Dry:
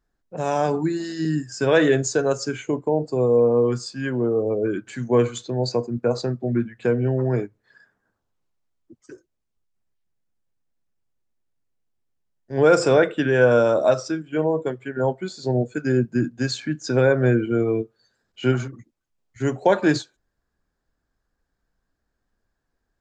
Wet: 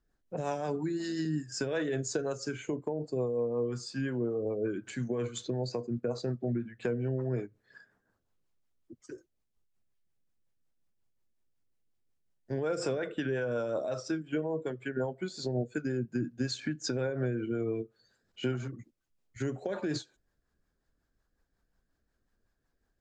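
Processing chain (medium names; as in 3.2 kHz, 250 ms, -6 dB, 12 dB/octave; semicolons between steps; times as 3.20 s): peak limiter -11.5 dBFS, peak gain reduction 7 dB; compression 4:1, threshold -29 dBFS, peak gain reduction 11.5 dB; rotary cabinet horn 5.5 Hz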